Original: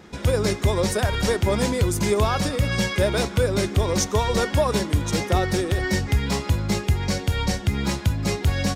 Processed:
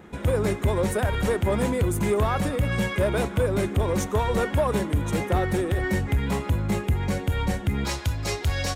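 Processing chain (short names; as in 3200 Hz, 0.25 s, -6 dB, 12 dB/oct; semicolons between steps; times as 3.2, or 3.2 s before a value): bell 5100 Hz -14.5 dB 0.96 oct, from 7.85 s 200 Hz; soft clip -15 dBFS, distortion -17 dB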